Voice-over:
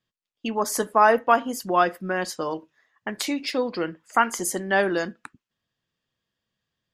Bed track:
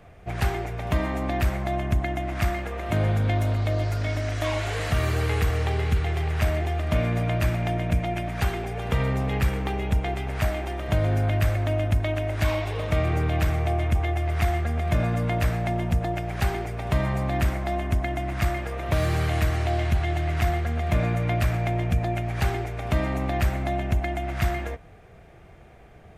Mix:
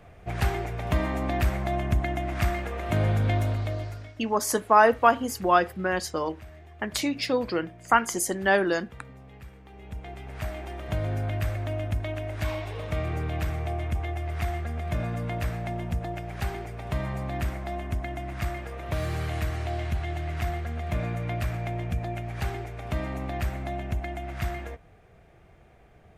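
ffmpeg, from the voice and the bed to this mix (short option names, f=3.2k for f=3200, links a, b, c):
-filter_complex "[0:a]adelay=3750,volume=-0.5dB[a];[1:a]volume=15.5dB,afade=t=out:st=3.35:d=0.79:silence=0.0841395,afade=t=in:st=9.67:d=1.11:silence=0.149624[b];[a][b]amix=inputs=2:normalize=0"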